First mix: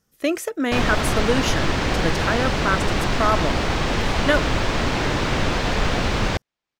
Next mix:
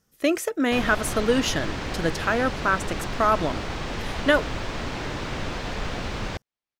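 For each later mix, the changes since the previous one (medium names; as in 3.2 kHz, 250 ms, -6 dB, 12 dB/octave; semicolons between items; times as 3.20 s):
background -9.0 dB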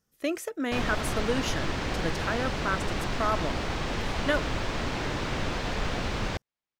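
speech -7.5 dB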